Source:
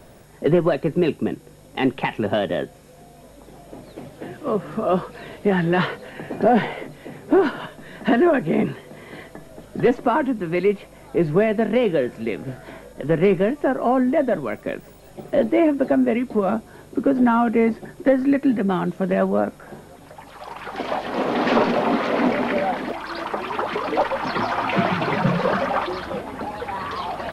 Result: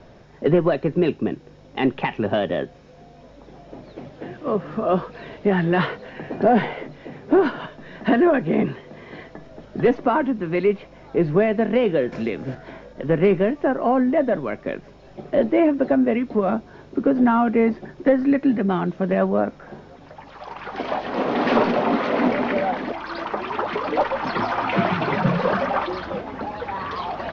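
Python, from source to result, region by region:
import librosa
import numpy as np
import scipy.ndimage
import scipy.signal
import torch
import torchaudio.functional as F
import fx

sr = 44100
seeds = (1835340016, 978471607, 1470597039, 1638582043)

y = fx.chain(x, sr, fx.high_shelf(hz=8900.0, db=11.0),
    fx.band_squash(depth_pct=70), at=(12.12, 12.55))
y = scipy.signal.sosfilt(scipy.signal.butter(12, 6400.0, 'lowpass', fs=sr, output='sos'), y)
y = fx.high_shelf(y, sr, hz=5000.0, db=-6.0)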